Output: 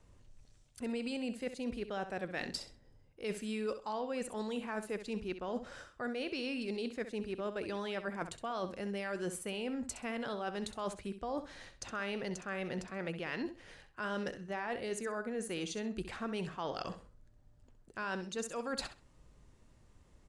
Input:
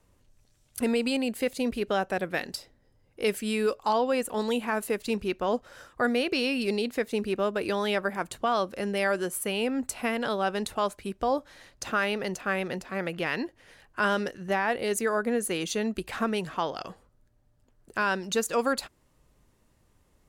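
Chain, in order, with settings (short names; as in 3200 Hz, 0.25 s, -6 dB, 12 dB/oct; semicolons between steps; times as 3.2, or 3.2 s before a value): LPF 9100 Hz 24 dB/oct; low shelf 150 Hz +5.5 dB; reverse; compressor 6:1, threshold -35 dBFS, peak gain reduction 14 dB; reverse; feedback echo 65 ms, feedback 21%, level -11 dB; gain -1 dB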